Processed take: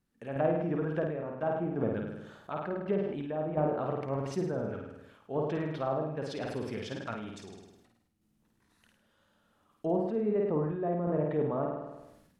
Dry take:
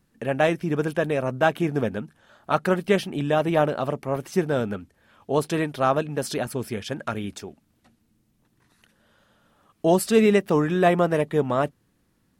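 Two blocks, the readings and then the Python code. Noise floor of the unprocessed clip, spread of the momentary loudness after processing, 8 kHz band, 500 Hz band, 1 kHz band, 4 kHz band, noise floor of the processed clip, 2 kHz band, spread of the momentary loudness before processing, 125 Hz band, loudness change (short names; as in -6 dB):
-68 dBFS, 11 LU, -20.0 dB, -8.5 dB, -11.0 dB, -15.5 dB, -72 dBFS, -15.5 dB, 11 LU, -7.5 dB, -9.5 dB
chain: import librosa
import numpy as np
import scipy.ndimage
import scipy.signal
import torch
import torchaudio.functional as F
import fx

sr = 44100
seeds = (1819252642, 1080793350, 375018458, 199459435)

p1 = fx.env_lowpass_down(x, sr, base_hz=800.0, full_db=-18.0)
p2 = p1 + fx.room_flutter(p1, sr, wall_m=8.9, rt60_s=0.75, dry=0)
p3 = fx.tremolo_random(p2, sr, seeds[0], hz=2.8, depth_pct=55)
p4 = fx.sustainer(p3, sr, db_per_s=53.0)
y = p4 * librosa.db_to_amplitude(-8.0)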